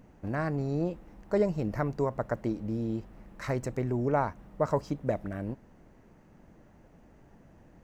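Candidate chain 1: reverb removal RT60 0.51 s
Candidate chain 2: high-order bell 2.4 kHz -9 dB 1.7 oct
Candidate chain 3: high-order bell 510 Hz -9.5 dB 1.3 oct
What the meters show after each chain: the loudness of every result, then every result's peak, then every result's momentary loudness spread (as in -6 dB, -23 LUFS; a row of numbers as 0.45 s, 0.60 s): -32.5 LUFS, -32.0 LUFS, -34.5 LUFS; -14.0 dBFS, -14.5 dBFS, -17.5 dBFS; 10 LU, 10 LU, 8 LU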